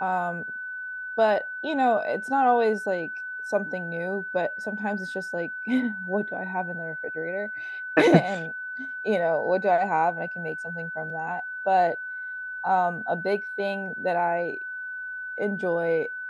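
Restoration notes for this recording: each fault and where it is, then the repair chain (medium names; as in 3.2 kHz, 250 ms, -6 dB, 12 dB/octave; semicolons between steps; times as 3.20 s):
whine 1.5 kHz -32 dBFS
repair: band-stop 1.5 kHz, Q 30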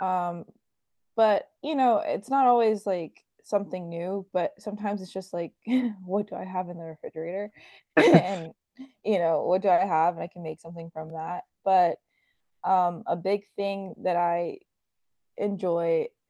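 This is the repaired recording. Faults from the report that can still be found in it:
nothing left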